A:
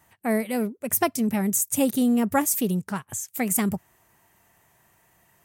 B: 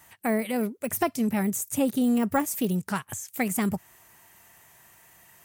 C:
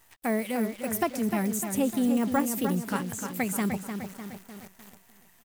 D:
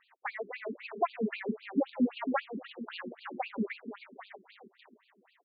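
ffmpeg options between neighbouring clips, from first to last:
ffmpeg -i in.wav -filter_complex "[0:a]deesser=0.9,tiltshelf=frequency=1200:gain=-4,asplit=2[link_01][link_02];[link_02]acompressor=threshold=-33dB:ratio=6,volume=-2.5dB[link_03];[link_01][link_03]amix=inputs=2:normalize=0" out.wav
ffmpeg -i in.wav -filter_complex "[0:a]asplit=2[link_01][link_02];[link_02]adelay=302,lowpass=frequency=4400:poles=1,volume=-7dB,asplit=2[link_03][link_04];[link_04]adelay=302,lowpass=frequency=4400:poles=1,volume=0.53,asplit=2[link_05][link_06];[link_06]adelay=302,lowpass=frequency=4400:poles=1,volume=0.53,asplit=2[link_07][link_08];[link_08]adelay=302,lowpass=frequency=4400:poles=1,volume=0.53,asplit=2[link_09][link_10];[link_10]adelay=302,lowpass=frequency=4400:poles=1,volume=0.53,asplit=2[link_11][link_12];[link_12]adelay=302,lowpass=frequency=4400:poles=1,volume=0.53[link_13];[link_01][link_03][link_05][link_07][link_09][link_11][link_13]amix=inputs=7:normalize=0,acrusher=bits=8:dc=4:mix=0:aa=0.000001,volume=-2dB" out.wav
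ffmpeg -i in.wav -af "afftfilt=real='re*between(b*sr/1024,290*pow(3400/290,0.5+0.5*sin(2*PI*3.8*pts/sr))/1.41,290*pow(3400/290,0.5+0.5*sin(2*PI*3.8*pts/sr))*1.41)':imag='im*between(b*sr/1024,290*pow(3400/290,0.5+0.5*sin(2*PI*3.8*pts/sr))/1.41,290*pow(3400/290,0.5+0.5*sin(2*PI*3.8*pts/sr))*1.41)':win_size=1024:overlap=0.75,volume=2.5dB" out.wav

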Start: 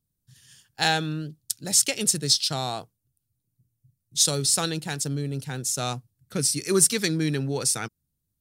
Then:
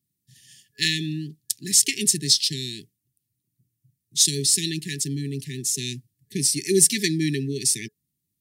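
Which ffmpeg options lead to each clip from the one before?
ffmpeg -i in.wav -af "highpass=140,afftfilt=real='re*(1-between(b*sr/4096,430,1700))':imag='im*(1-between(b*sr/4096,430,1700))':win_size=4096:overlap=0.75,volume=2.5dB" out.wav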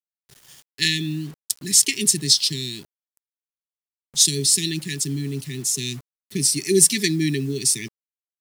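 ffmpeg -i in.wav -af "acrusher=bits=7:mix=0:aa=0.000001,volume=2dB" out.wav

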